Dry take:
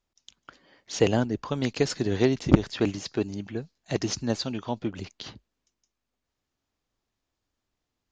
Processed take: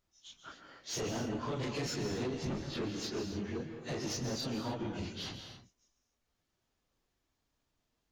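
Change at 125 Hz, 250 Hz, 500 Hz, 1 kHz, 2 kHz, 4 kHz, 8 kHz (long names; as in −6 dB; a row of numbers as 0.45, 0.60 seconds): −10.5, −11.0, −11.5, −7.0, −8.0, −5.5, −5.0 decibels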